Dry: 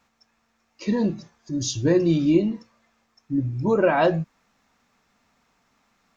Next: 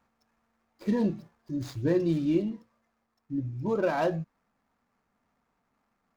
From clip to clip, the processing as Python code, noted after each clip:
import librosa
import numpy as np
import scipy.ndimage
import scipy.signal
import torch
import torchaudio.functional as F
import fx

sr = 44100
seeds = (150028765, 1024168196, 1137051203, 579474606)

y = scipy.ndimage.median_filter(x, 15, mode='constant')
y = fx.rider(y, sr, range_db=10, speed_s=2.0)
y = F.gain(torch.from_numpy(y), -6.0).numpy()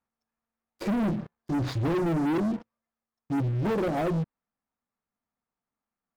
y = fx.env_lowpass_down(x, sr, base_hz=350.0, full_db=-23.0)
y = fx.leveller(y, sr, passes=5)
y = F.gain(torch.from_numpy(y), -6.0).numpy()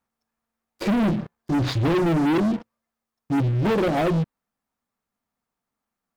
y = fx.dynamic_eq(x, sr, hz=3300.0, q=0.96, threshold_db=-49.0, ratio=4.0, max_db=5)
y = F.gain(torch.from_numpy(y), 5.5).numpy()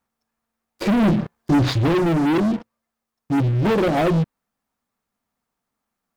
y = fx.rider(x, sr, range_db=10, speed_s=0.5)
y = F.gain(torch.from_numpy(y), 4.0).numpy()